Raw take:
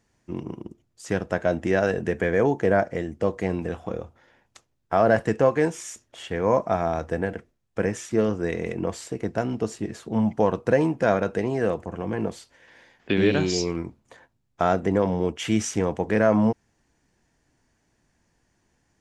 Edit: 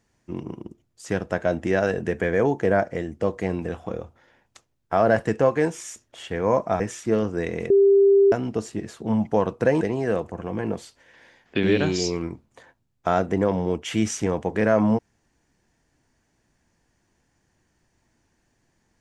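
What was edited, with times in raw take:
0:06.80–0:07.86: remove
0:08.76–0:09.38: beep over 396 Hz −12 dBFS
0:10.87–0:11.35: remove

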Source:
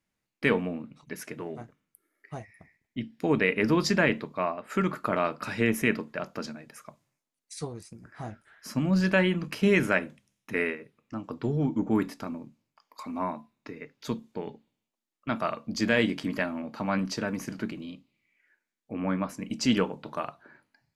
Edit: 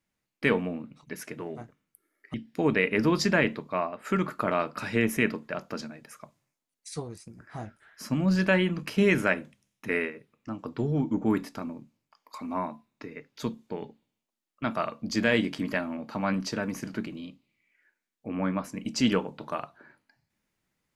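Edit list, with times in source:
0:02.34–0:02.99: remove

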